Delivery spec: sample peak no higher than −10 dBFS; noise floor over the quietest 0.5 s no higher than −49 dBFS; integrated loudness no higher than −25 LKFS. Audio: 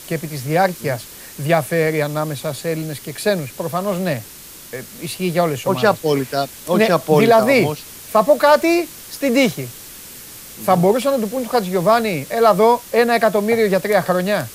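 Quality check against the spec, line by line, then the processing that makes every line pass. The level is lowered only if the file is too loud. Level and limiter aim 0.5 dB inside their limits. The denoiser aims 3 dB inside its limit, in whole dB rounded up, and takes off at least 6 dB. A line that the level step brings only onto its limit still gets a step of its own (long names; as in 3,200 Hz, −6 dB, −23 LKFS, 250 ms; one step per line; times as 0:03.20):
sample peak −2.0 dBFS: out of spec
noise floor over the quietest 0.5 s −38 dBFS: out of spec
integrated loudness −17.5 LKFS: out of spec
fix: broadband denoise 6 dB, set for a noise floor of −38 dBFS
level −8 dB
brickwall limiter −10.5 dBFS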